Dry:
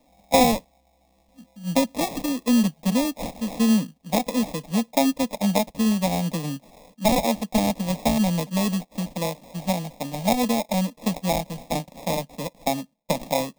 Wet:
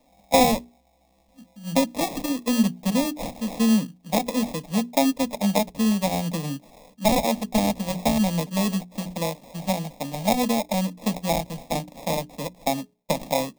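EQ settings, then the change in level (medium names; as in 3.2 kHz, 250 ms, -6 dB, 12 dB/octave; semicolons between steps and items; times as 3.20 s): hum notches 60/120/180/240/300/360/420 Hz; 0.0 dB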